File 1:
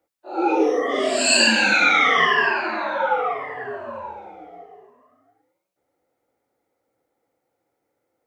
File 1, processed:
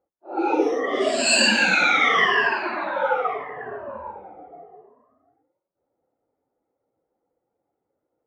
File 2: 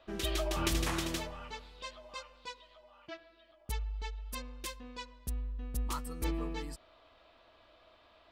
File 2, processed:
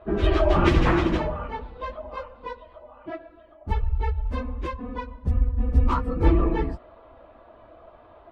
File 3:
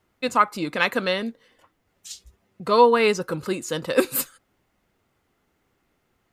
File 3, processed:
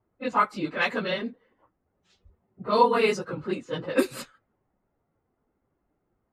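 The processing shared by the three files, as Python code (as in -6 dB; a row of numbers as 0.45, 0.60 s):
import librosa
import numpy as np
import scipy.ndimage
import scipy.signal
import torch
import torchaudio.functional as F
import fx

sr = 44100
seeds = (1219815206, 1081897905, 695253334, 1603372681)

y = fx.phase_scramble(x, sr, seeds[0], window_ms=50)
y = fx.env_lowpass(y, sr, base_hz=1000.0, full_db=-14.5)
y = librosa.util.normalize(y) * 10.0 ** (-6 / 20.0)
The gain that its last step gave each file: -1.5, +15.0, -4.0 dB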